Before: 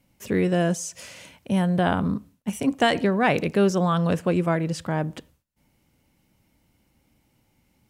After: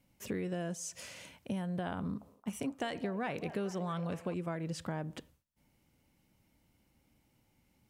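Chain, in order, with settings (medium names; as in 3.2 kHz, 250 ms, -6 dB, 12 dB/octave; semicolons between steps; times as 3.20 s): compression 6:1, threshold -28 dBFS, peak gain reduction 12.5 dB; 1.99–4.34 s: repeats whose band climbs or falls 222 ms, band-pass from 660 Hz, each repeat 0.7 oct, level -9.5 dB; trim -6 dB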